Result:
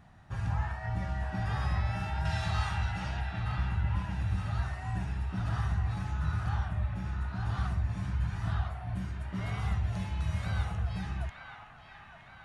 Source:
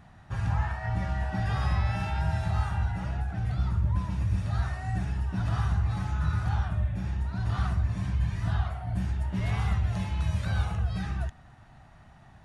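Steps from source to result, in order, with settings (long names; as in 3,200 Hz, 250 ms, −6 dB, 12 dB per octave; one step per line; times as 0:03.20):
0:02.25–0:03.21: parametric band 4,000 Hz +12 dB 2.4 octaves
0:08.96–0:09.63: notch comb filter 870 Hz
delay with a band-pass on its return 916 ms, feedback 52%, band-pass 1,600 Hz, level −4.5 dB
level −4 dB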